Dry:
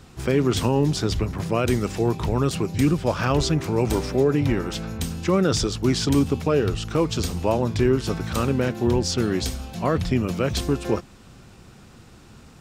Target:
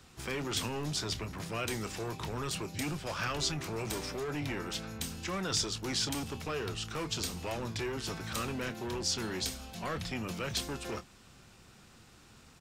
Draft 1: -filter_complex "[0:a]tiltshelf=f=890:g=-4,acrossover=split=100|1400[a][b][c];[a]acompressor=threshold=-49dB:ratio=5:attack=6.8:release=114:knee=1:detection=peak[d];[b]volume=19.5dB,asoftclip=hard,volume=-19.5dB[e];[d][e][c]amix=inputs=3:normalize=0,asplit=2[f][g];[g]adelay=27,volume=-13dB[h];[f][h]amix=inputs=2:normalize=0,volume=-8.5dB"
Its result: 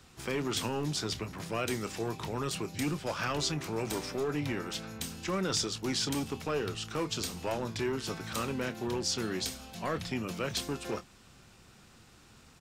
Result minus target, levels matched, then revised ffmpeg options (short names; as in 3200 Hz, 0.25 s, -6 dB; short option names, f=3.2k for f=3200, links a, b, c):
compressor: peak gain reduction +7.5 dB; overloaded stage: distortion -7 dB
-filter_complex "[0:a]tiltshelf=f=890:g=-4,acrossover=split=100|1400[a][b][c];[a]acompressor=threshold=-39.5dB:ratio=5:attack=6.8:release=114:knee=1:detection=peak[d];[b]volume=26.5dB,asoftclip=hard,volume=-26.5dB[e];[d][e][c]amix=inputs=3:normalize=0,asplit=2[f][g];[g]adelay=27,volume=-13dB[h];[f][h]amix=inputs=2:normalize=0,volume=-8.5dB"